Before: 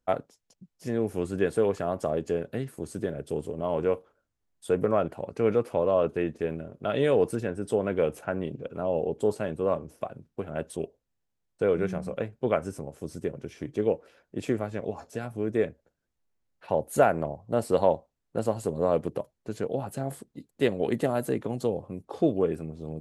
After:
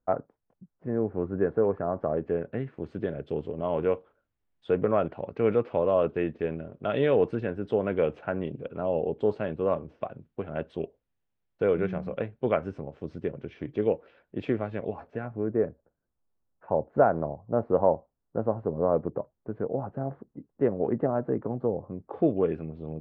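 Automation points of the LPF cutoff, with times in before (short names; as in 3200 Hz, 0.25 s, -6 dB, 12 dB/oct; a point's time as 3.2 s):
LPF 24 dB/oct
1.85 s 1500 Hz
3.08 s 3400 Hz
14.83 s 3400 Hz
15.58 s 1400 Hz
21.81 s 1400 Hz
22.49 s 3100 Hz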